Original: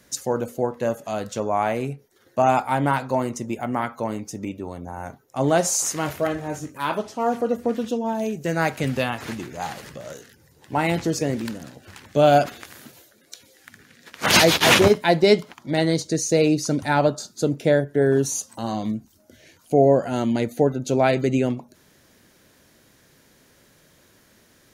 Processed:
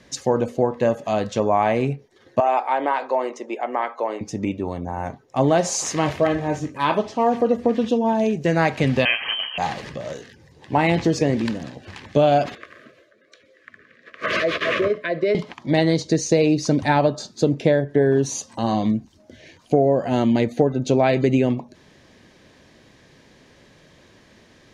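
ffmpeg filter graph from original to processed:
-filter_complex "[0:a]asettb=1/sr,asplit=3[a][b][c];[a]atrim=end=2.404[d];[b]atrim=start=2.4:end=4.21,asetpts=PTS-STARTPTS,afade=t=in:d=0.004:c=qsin,afade=t=out:st=1.806:d=0.004:c=qsin,highpass=f=380:w=0.5412,highpass=f=380:w=1.3066,highshelf=f=4.5k:g=-11,acompressor=threshold=-26dB:ratio=1.5:attack=3.2:release=140:knee=1:detection=peak[e];[c]atrim=start=4.206[f];[d][e]acrossfade=d=0.004:c1=hsin:c2=qsin[g];[g][f]acrossfade=d=0.004:c1=qsin:c2=hsin,asettb=1/sr,asplit=3[h][i][j];[h]atrim=end=9.054[k];[i]atrim=start=9.05:end=9.58,asetpts=PTS-STARTPTS,afade=t=in:d=0.004:c=qsin,afade=t=out:st=0.526:d=0.004:c=qsin,equalizer=f=950:t=o:w=0.89:g=6.5,bandreject=f=1.1k:w=11,lowpass=f=2.8k:t=q:w=0.5098,lowpass=f=2.8k:t=q:w=0.6013,lowpass=f=2.8k:t=q:w=0.9,lowpass=f=2.8k:t=q:w=2.563,afreqshift=-3300[l];[j]atrim=start=9.576[m];[k][l]acrossfade=d=0.004:c1=hsin:c2=qsin[n];[n][m]acrossfade=d=0.004:c1=qsin:c2=hsin,asettb=1/sr,asplit=3[o][p][q];[o]atrim=end=12.554[r];[p]atrim=start=12.55:end=15.35,asetpts=PTS-STARTPTS,afade=t=in:d=0.004:c=qsin,afade=t=out:st=2.796:d=0.004:c=qsin,acrossover=split=400 2100:gain=0.2 1 0.141[s][t][u];[s][t][u]amix=inputs=3:normalize=0,acompressor=threshold=-22dB:ratio=4:attack=3.2:release=140:knee=1:detection=peak,asuperstop=centerf=840:order=12:qfactor=2.2[v];[q]atrim=start=15.346[w];[r][v]acrossfade=d=0.004:c1=hsin:c2=qsin[x];[x][w]acrossfade=d=0.004:c1=qsin:c2=hsin,lowpass=4.5k,bandreject=f=1.4k:w=6.3,acompressor=threshold=-19dB:ratio=6,volume=6dB"

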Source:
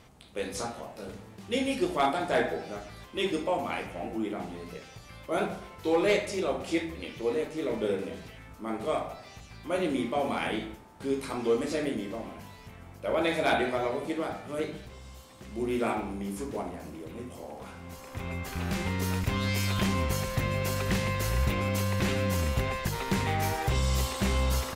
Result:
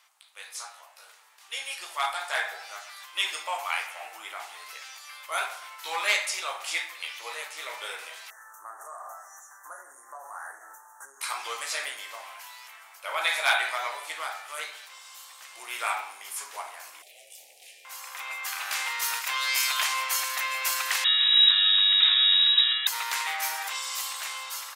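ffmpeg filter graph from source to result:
-filter_complex "[0:a]asettb=1/sr,asplit=3[a][b][c];[a]atrim=end=8.304[d];[b]atrim=start=8.3:end=11.21,asetpts=PTS-STARTPTS,afade=t=in:d=0.004:c=qsin,afade=t=out:st=2.906:d=0.004:c=qsin,asplit=2[e][f];[f]adelay=25,volume=-12.5dB[g];[e][g]amix=inputs=2:normalize=0,atrim=end_sample=128331,acompressor=threshold=-35dB:ratio=16:attack=3.2:release=140:knee=1:detection=peak,asuperstop=centerf=3300:order=20:qfactor=0.82[h];[c]atrim=start=11.206[i];[d][h]acrossfade=d=0.004:c1=hsin:c2=qsin[j];[j][i]acrossfade=d=0.004:c1=qsin:c2=hsin,asettb=1/sr,asplit=3[k][l][m];[k]atrim=end=17.024[n];[l]atrim=start=17.02:end=17.85,asetpts=PTS-STARTPTS,afade=t=in:d=0.004:c=qsin,afade=t=out:st=0.826:d=0.004:c=qsin,aeval=exprs='val(0)*sin(2*PI*290*n/s)':c=same,asoftclip=type=hard:threshold=-36dB,asuperstop=centerf=1200:order=8:qfactor=0.77[o];[m]atrim=start=17.846[p];[n][o]acrossfade=d=0.004:c1=hsin:c2=qsin[q];[q][p]acrossfade=d=0.004:c1=qsin:c2=hsin,asettb=1/sr,asplit=3[r][s][t];[r]atrim=end=21.044[u];[s]atrim=start=21.04:end=22.87,asetpts=PTS-STARTPTS,afade=t=in:d=0.004:c=qsin,afade=t=out:st=1.826:d=0.004:c=qsin,highshelf=f=2.6k:g=-11.5,aeval=exprs='val(0)+0.00562*sin(2*PI*2200*n/s)':c=same,lowpass=f=3.3k:t=q:w=0.5098,lowpass=f=3.3k:t=q:w=0.6013,lowpass=f=3.3k:t=q:w=0.9,lowpass=f=3.3k:t=q:w=2.563,afreqshift=-3900[v];[t]atrim=start=22.866[w];[u][v]acrossfade=d=0.004:c1=hsin:c2=qsin[x];[x][w]acrossfade=d=0.004:c1=qsin:c2=hsin,highpass=f=960:w=0.5412,highpass=f=960:w=1.3066,highshelf=f=6.2k:g=6,dynaudnorm=f=890:g=5:m=10dB,volume=-3dB"

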